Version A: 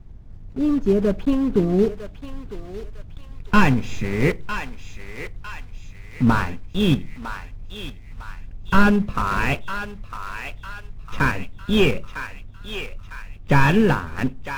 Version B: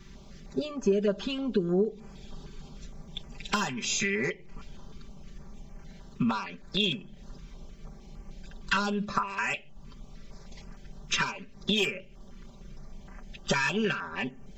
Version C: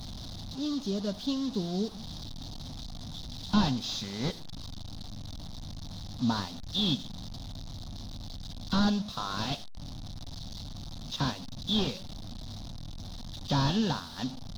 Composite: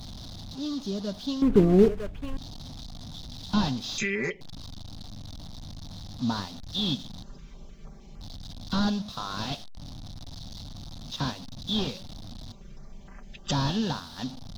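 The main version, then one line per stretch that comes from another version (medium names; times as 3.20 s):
C
1.42–2.37 s: from A
3.98–4.41 s: from B
7.23–8.21 s: from B
12.52–13.51 s: from B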